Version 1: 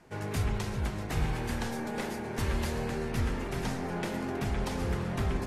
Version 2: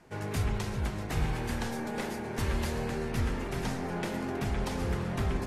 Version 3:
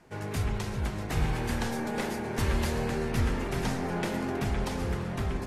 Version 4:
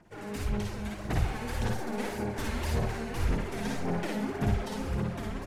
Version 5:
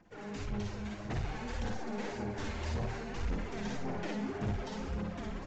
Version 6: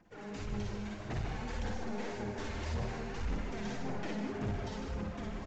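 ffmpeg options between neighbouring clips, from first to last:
ffmpeg -i in.wav -af anull out.wav
ffmpeg -i in.wav -af "dynaudnorm=framelen=240:gausssize=9:maxgain=3dB" out.wav
ffmpeg -i in.wav -filter_complex "[0:a]aphaser=in_gain=1:out_gain=1:delay=4.7:decay=0.67:speed=1.8:type=sinusoidal,asplit=2[link_01][link_02];[link_02]aecho=0:1:53|63:0.668|0.562[link_03];[link_01][link_03]amix=inputs=2:normalize=0,volume=-8dB" out.wav
ffmpeg -i in.wav -af "aresample=16000,asoftclip=type=tanh:threshold=-24.5dB,aresample=44100,flanger=delay=3.8:depth=6.6:regen=-43:speed=0.59:shape=sinusoidal" out.wav
ffmpeg -i in.wav -af "aecho=1:1:153:0.422,volume=-1.5dB" out.wav

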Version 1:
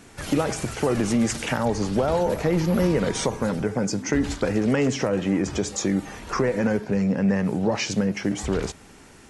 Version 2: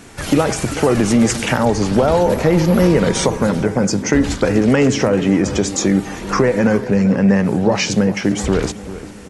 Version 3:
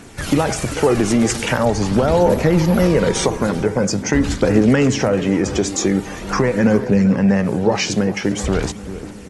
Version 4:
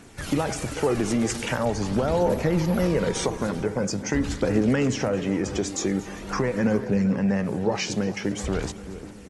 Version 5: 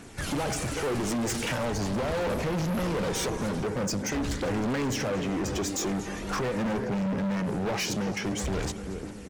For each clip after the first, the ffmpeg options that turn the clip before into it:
ffmpeg -i in.wav -filter_complex "[0:a]asplit=2[link_01][link_02];[link_02]adelay=392,lowpass=frequency=2000:poles=1,volume=-14dB,asplit=2[link_03][link_04];[link_04]adelay=392,lowpass=frequency=2000:poles=1,volume=0.51,asplit=2[link_05][link_06];[link_06]adelay=392,lowpass=frequency=2000:poles=1,volume=0.51,asplit=2[link_07][link_08];[link_08]adelay=392,lowpass=frequency=2000:poles=1,volume=0.51,asplit=2[link_09][link_10];[link_10]adelay=392,lowpass=frequency=2000:poles=1,volume=0.51[link_11];[link_01][link_03][link_05][link_07][link_09][link_11]amix=inputs=6:normalize=0,volume=8dB" out.wav
ffmpeg -i in.wav -af "aphaser=in_gain=1:out_gain=1:delay=3:decay=0.28:speed=0.44:type=triangular,volume=-1.5dB" out.wav
ffmpeg -i in.wav -af "aecho=1:1:231:0.106,volume=-8dB" out.wav
ffmpeg -i in.wav -af "volume=28dB,asoftclip=hard,volume=-28dB,volume=1.5dB" out.wav

